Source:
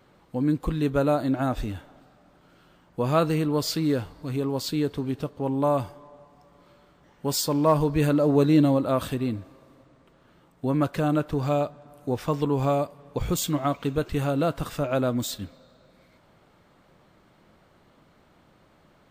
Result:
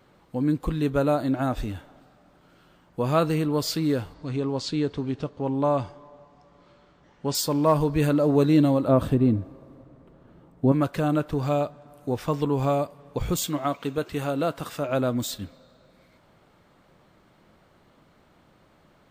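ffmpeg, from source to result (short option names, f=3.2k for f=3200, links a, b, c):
-filter_complex "[0:a]asettb=1/sr,asplit=3[a][b][c];[a]atrim=end=4.144[d];[b]atrim=start=4.14:end=7.35,asetpts=PTS-STARTPTS,afade=t=in:d=0.004:c=qsin,afade=t=out:st=3.206:d=0.004:c=qsin,lowpass=f=7.1k:w=0.5412,lowpass=f=7.1k:w=1.3066[e];[c]atrim=start=7.346[f];[d][e]acrossfade=d=0.004:c1=hsin:c2=qsin[g];[g][f]acrossfade=d=0.004:c1=qsin:c2=hsin,asettb=1/sr,asplit=3[h][i][j];[h]atrim=end=8.884[k];[i]atrim=start=8.88:end=10.72,asetpts=PTS-STARTPTS,afade=t=in:d=0.004:c=qsin,afade=t=out:st=1.836:d=0.004:c=qsin,tiltshelf=f=1.1k:g=8[l];[j]atrim=start=10.716[m];[k][l]acrossfade=d=0.004:c1=hsin:c2=qsin[n];[n][m]acrossfade=d=0.004:c1=qsin:c2=hsin,asettb=1/sr,asplit=3[o][p][q];[o]atrim=end=13.464[r];[p]atrim=start=13.46:end=14.89,asetpts=PTS-STARTPTS,afade=t=in:d=0.004:c=qsin,afade=t=out:st=1.426:d=0.004:c=qsin,highpass=f=220:p=1[s];[q]atrim=start=14.886[t];[r][s]acrossfade=d=0.004:c1=hsin:c2=qsin[u];[u][t]acrossfade=d=0.004:c1=qsin:c2=hsin"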